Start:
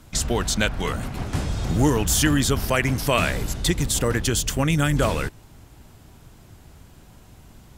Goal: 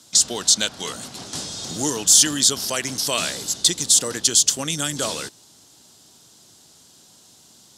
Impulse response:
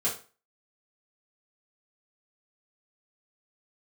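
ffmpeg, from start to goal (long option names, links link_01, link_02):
-af "highpass=210,lowpass=6800,aexciter=amount=8.9:drive=2.8:freq=3400,volume=-5dB"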